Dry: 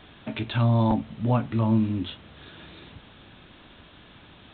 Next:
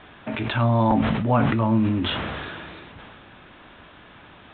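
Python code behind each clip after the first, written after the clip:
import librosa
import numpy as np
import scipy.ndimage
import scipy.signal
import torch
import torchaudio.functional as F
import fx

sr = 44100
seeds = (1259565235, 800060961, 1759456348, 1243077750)

y = scipy.signal.sosfilt(scipy.signal.butter(2, 2100.0, 'lowpass', fs=sr, output='sos'), x)
y = fx.low_shelf(y, sr, hz=460.0, db=-9.0)
y = fx.sustainer(y, sr, db_per_s=23.0)
y = y * 10.0 ** (8.0 / 20.0)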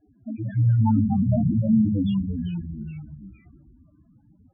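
y = fx.spec_topn(x, sr, count=2)
y = fx.env_lowpass(y, sr, base_hz=320.0, full_db=-20.0)
y = fx.echo_pitch(y, sr, ms=140, semitones=-2, count=3, db_per_echo=-6.0)
y = y * 10.0 ** (3.5 / 20.0)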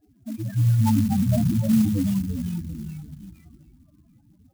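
y = x + 10.0 ** (-21.5 / 20.0) * np.pad(x, (int(735 * sr / 1000.0), 0))[:len(x)]
y = fx.clock_jitter(y, sr, seeds[0], jitter_ms=0.068)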